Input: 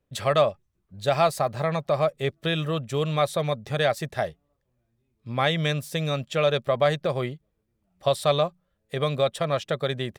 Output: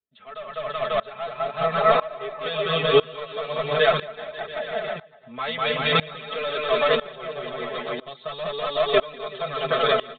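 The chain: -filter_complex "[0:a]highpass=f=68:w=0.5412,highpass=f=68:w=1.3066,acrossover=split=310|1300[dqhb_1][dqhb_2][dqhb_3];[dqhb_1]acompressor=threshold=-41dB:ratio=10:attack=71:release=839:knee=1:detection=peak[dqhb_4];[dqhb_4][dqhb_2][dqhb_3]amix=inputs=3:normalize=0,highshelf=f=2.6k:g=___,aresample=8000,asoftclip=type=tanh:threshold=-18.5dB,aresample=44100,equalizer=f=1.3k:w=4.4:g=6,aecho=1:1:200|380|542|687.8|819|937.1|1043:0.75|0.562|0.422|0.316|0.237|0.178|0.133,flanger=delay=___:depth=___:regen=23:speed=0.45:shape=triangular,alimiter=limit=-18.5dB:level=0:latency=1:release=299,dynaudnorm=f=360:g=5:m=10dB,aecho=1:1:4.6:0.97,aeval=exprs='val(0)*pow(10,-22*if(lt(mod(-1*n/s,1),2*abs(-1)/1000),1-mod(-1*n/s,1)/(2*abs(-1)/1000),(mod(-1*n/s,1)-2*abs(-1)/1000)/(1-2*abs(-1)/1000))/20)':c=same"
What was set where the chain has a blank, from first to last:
4.5, 2.4, 7.1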